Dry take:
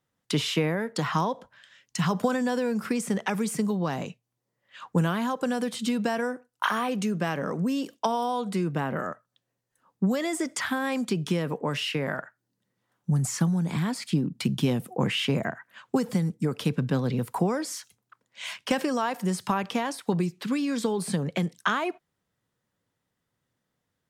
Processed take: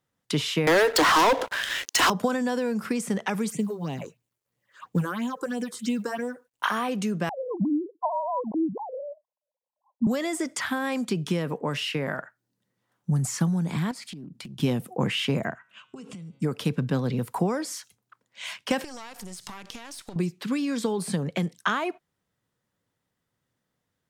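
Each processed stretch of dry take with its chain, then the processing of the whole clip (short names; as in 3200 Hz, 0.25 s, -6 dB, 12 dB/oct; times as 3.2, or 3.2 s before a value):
0.67–2.1 steep high-pass 280 Hz 96 dB/oct + upward compressor, threshold -36 dBFS + sample leveller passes 5
3.5–6.63 HPF 64 Hz 24 dB/oct + phaser stages 6, 3 Hz, lowest notch 170–1500 Hz + companded quantiser 8-bit
7.29–10.07 sine-wave speech + brick-wall FIR low-pass 1100 Hz
13.91–14.6 compressor 20:1, threshold -36 dBFS + Doppler distortion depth 0.21 ms
15.55–16.42 speaker cabinet 100–8600 Hz, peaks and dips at 300 Hz -6 dB, 520 Hz -6 dB, 850 Hz -8 dB, 1800 Hz -10 dB, 2700 Hz +10 dB, 4500 Hz -7 dB + de-hum 136.5 Hz, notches 34 + compressor 16:1, threshold -37 dBFS
18.84–20.16 half-wave gain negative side -12 dB + bell 6700 Hz +10.5 dB 2.5 oct + compressor 10:1, threshold -35 dBFS
whole clip: dry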